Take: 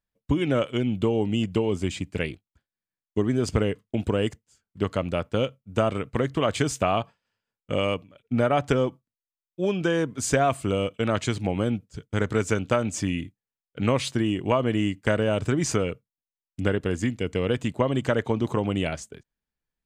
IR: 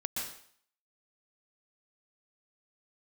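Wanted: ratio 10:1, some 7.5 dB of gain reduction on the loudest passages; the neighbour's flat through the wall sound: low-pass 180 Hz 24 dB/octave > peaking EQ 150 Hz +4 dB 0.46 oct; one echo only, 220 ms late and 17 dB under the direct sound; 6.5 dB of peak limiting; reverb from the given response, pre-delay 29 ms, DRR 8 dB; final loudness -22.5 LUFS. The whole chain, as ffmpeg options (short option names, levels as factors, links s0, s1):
-filter_complex "[0:a]acompressor=threshold=0.0501:ratio=10,alimiter=limit=0.0891:level=0:latency=1,aecho=1:1:220:0.141,asplit=2[s0][s1];[1:a]atrim=start_sample=2205,adelay=29[s2];[s1][s2]afir=irnorm=-1:irlink=0,volume=0.282[s3];[s0][s3]amix=inputs=2:normalize=0,lowpass=f=180:w=0.5412,lowpass=f=180:w=1.3066,equalizer=f=150:t=o:w=0.46:g=4,volume=6.31"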